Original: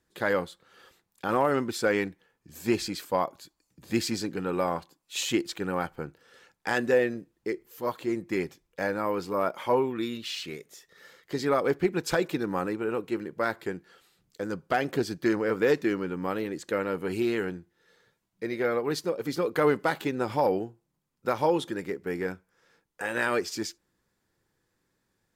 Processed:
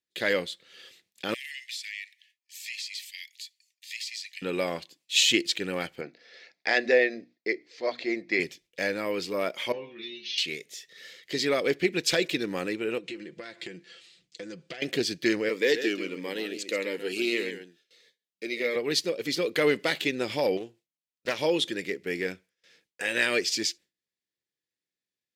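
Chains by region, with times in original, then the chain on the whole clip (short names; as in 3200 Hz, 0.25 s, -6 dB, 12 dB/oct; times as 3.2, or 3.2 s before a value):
1.34–4.42 steep high-pass 1800 Hz 96 dB/oct + compressor 4:1, threshold -44 dBFS
6.01–8.4 speaker cabinet 220–5200 Hz, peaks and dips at 690 Hz +10 dB, 2100 Hz +5 dB, 3000 Hz -10 dB, 4700 Hz +3 dB + notches 60/120/180/240/300 Hz
9.72–10.38 brick-wall FIR low-pass 6600 Hz + metallic resonator 70 Hz, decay 0.45 s, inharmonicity 0.002
12.98–14.82 compressor 8:1, threshold -37 dBFS + LPF 8800 Hz 24 dB/oct + comb 5.9 ms, depth 53%
15.49–18.76 HPF 270 Hz + echo 0.135 s -9 dB + cascading phaser falling 1.6 Hz
20.57–21.39 low shelf 360 Hz -6 dB + Doppler distortion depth 0.32 ms
whole clip: weighting filter D; gate with hold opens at -49 dBFS; band shelf 1100 Hz -8.5 dB 1.2 oct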